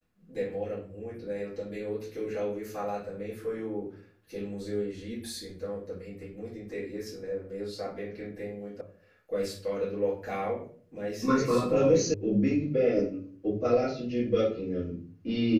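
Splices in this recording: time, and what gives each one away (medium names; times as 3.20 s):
8.81 s: sound stops dead
12.14 s: sound stops dead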